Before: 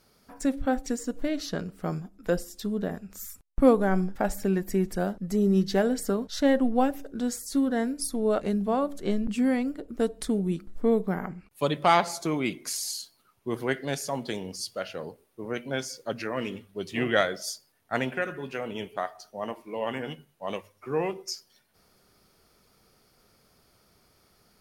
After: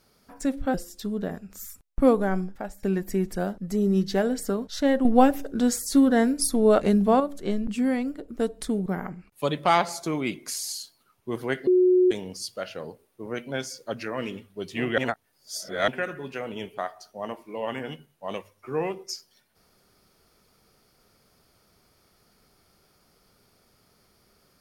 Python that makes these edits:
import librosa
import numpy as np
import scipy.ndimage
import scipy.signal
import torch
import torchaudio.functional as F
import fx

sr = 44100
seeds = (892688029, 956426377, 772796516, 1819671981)

y = fx.edit(x, sr, fx.cut(start_s=0.74, length_s=1.6),
    fx.fade_out_to(start_s=3.82, length_s=0.61, floor_db=-18.0),
    fx.clip_gain(start_s=6.65, length_s=2.15, db=6.5),
    fx.cut(start_s=10.46, length_s=0.59),
    fx.bleep(start_s=13.86, length_s=0.44, hz=365.0, db=-15.0),
    fx.reverse_span(start_s=17.17, length_s=0.9), tone=tone)